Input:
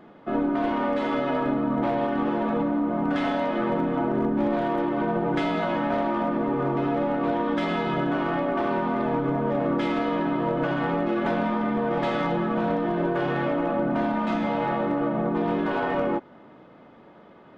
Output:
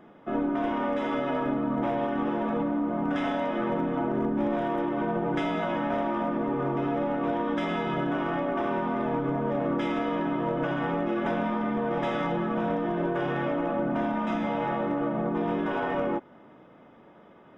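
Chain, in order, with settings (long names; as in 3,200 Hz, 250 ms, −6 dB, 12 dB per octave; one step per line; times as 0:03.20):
Butterworth band-reject 4,300 Hz, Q 4.2
level −3 dB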